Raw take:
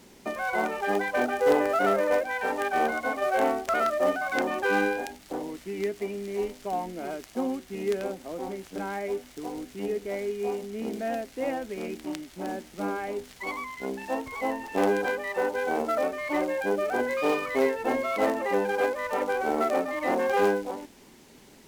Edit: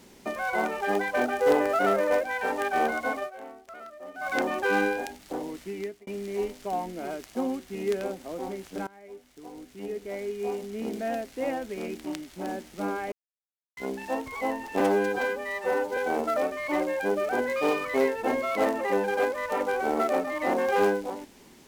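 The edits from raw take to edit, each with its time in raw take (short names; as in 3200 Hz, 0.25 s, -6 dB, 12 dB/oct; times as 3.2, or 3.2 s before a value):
3.16–4.28 dip -18.5 dB, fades 0.14 s
5.67–6.07 fade out
8.87–10.71 fade in, from -22.5 dB
13.12–13.77 mute
14.8–15.58 stretch 1.5×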